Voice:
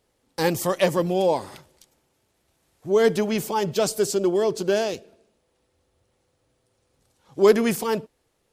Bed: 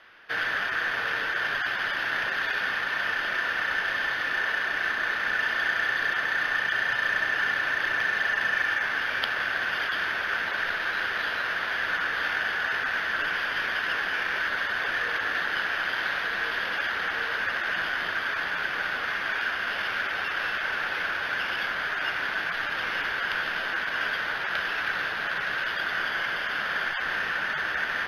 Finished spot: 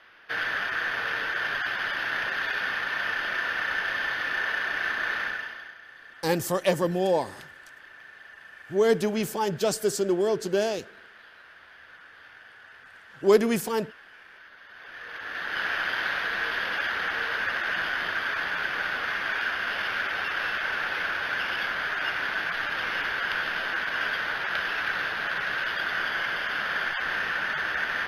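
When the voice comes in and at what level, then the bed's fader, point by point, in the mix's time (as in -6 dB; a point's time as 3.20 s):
5.85 s, -3.0 dB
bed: 5.21 s -1 dB
5.80 s -22 dB
14.60 s -22 dB
15.66 s 0 dB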